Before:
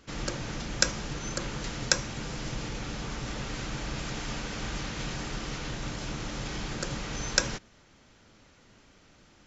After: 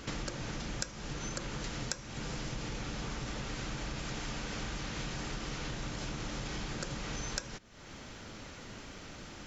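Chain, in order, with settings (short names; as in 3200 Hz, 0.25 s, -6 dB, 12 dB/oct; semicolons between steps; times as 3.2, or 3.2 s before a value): compressor 6:1, threshold -48 dBFS, peak gain reduction 28 dB; gain +11 dB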